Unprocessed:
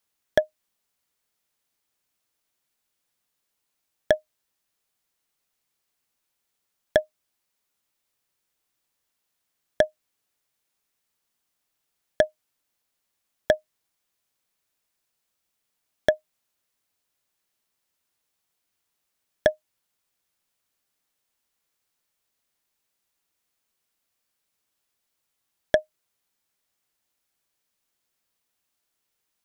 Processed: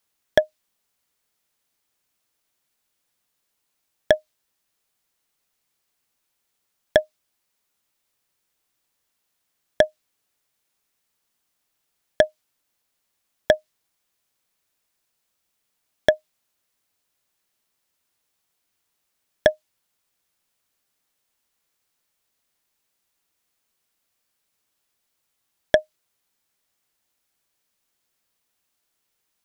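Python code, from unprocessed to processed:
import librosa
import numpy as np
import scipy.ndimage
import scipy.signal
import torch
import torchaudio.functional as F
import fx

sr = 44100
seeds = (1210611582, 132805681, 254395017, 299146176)

y = fx.dynamic_eq(x, sr, hz=4200.0, q=0.83, threshold_db=-46.0, ratio=4.0, max_db=4)
y = y * 10.0 ** (3.0 / 20.0)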